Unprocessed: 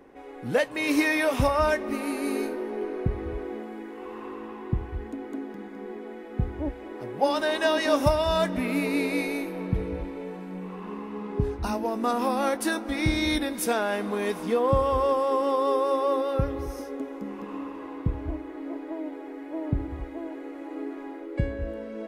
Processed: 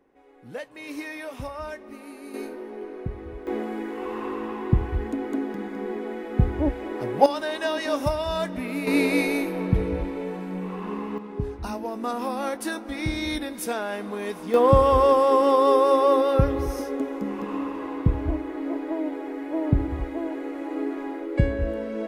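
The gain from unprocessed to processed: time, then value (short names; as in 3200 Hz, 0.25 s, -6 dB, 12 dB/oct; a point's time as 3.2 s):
-12 dB
from 2.34 s -5 dB
from 3.47 s +7 dB
from 7.26 s -3 dB
from 8.87 s +5 dB
from 11.18 s -3 dB
from 14.54 s +6 dB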